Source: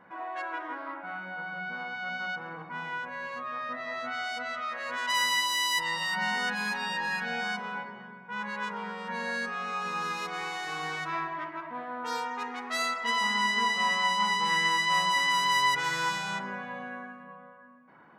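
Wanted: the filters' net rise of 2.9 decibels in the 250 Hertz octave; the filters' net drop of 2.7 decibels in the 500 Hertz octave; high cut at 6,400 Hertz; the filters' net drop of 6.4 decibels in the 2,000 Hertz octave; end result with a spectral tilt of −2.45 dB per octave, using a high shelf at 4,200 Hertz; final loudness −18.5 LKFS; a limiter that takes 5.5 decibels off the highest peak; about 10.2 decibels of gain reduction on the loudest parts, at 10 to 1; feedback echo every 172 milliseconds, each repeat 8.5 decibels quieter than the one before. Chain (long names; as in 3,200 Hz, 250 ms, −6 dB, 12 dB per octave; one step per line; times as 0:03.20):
low-pass filter 6,400 Hz
parametric band 250 Hz +4.5 dB
parametric band 500 Hz −4 dB
parametric band 2,000 Hz −9 dB
high-shelf EQ 4,200 Hz +8.5 dB
downward compressor 10 to 1, threshold −35 dBFS
brickwall limiter −32 dBFS
repeating echo 172 ms, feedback 38%, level −8.5 dB
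level +20.5 dB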